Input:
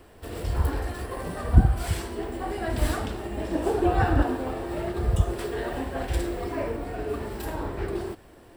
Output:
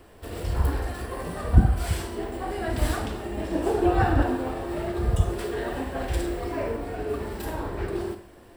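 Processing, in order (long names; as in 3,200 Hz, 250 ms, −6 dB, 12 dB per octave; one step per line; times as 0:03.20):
four-comb reverb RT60 0.47 s, combs from 31 ms, DRR 8.5 dB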